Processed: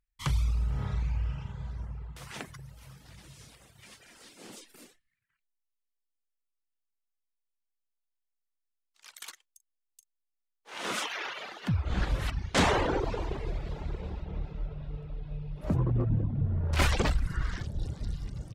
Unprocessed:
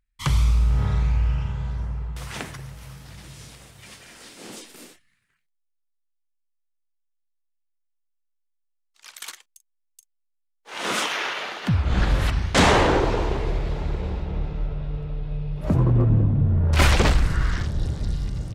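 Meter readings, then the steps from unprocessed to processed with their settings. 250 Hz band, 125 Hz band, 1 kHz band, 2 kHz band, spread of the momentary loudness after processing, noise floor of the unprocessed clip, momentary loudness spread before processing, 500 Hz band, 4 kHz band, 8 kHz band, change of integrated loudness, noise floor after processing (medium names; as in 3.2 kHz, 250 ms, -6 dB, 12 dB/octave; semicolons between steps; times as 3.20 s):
-8.5 dB, -9.5 dB, -9.0 dB, -8.5 dB, 21 LU, -73 dBFS, 21 LU, -9.0 dB, -8.5 dB, -8.5 dB, -9.0 dB, -83 dBFS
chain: reverb removal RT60 0.76 s; trim -7 dB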